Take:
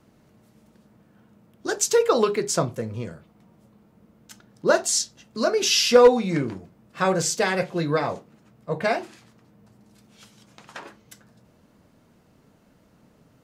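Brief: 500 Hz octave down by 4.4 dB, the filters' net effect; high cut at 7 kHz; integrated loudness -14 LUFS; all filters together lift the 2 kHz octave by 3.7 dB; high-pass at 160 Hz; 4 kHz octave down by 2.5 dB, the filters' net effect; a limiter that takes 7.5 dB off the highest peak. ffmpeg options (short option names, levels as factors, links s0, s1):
-af "highpass=160,lowpass=7000,equalizer=f=500:t=o:g=-5,equalizer=f=2000:t=o:g=6.5,equalizer=f=4000:t=o:g=-4.5,volume=3.98,alimiter=limit=0.891:level=0:latency=1"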